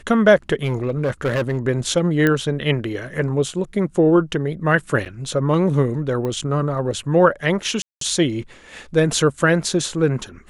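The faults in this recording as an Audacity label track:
0.630000	1.670000	clipping −16 dBFS
2.270000	2.270000	click −6 dBFS
5.050000	5.060000	drop-out 8 ms
6.250000	6.250000	click −15 dBFS
7.820000	8.010000	drop-out 193 ms

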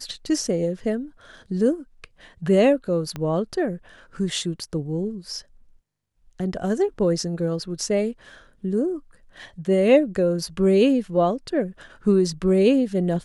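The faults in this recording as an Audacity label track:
3.160000	3.160000	click −17 dBFS

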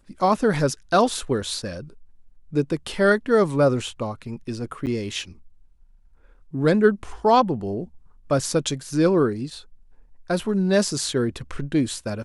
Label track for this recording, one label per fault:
4.860000	4.870000	drop-out 9 ms

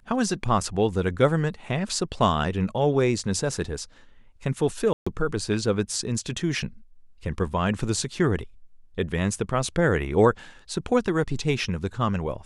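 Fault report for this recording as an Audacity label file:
4.930000	5.070000	drop-out 135 ms

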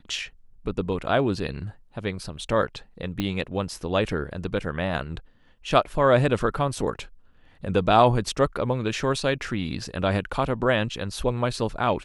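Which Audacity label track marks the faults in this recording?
3.200000	3.200000	click −13 dBFS

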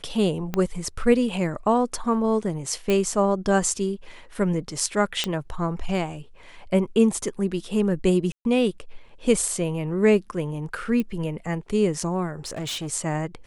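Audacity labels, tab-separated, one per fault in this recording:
0.540000	0.540000	click −12 dBFS
2.900000	2.900000	click −11 dBFS
5.240000	5.240000	click −9 dBFS
8.320000	8.450000	drop-out 131 ms
11.000000	11.000000	click −15 dBFS
12.450000	12.880000	clipping −27 dBFS

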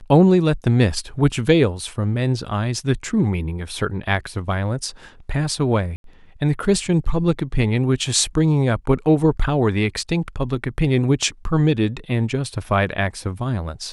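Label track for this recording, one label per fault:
5.960000	6.040000	drop-out 82 ms

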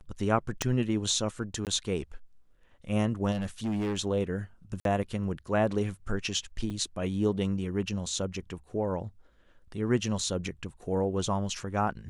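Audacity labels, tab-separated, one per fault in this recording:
0.620000	0.620000	click −12 dBFS
1.650000	1.670000	drop-out 18 ms
3.310000	3.980000	clipping −27 dBFS
4.800000	4.850000	drop-out 52 ms
6.700000	6.700000	drop-out 3.6 ms

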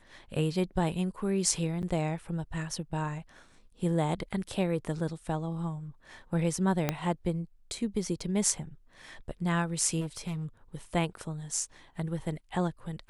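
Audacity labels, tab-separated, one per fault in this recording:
1.820000	1.830000	drop-out 9.2 ms
6.890000	6.890000	click −12 dBFS
10.000000	10.440000	clipping −30.5 dBFS

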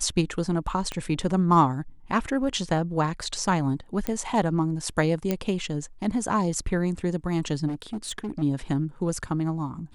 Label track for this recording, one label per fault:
0.920000	0.920000	click −16 dBFS
4.070000	4.070000	click −12 dBFS
5.310000	5.310000	click −11 dBFS
7.670000	8.430000	clipping −26.5 dBFS

